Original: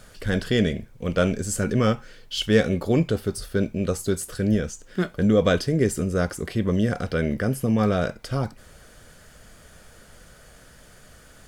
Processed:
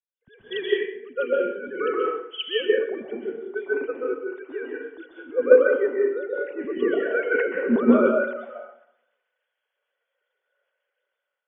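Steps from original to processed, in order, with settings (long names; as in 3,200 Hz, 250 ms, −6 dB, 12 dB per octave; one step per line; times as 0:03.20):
three sine waves on the formant tracks
0:04.01–0:05.36: parametric band 190 Hz −14 dB 1.2 octaves
automatic gain control gain up to 13.5 dB
dense smooth reverb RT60 1.3 s, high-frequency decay 0.55×, pre-delay 115 ms, DRR −3 dB
multiband upward and downward expander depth 100%
level −14.5 dB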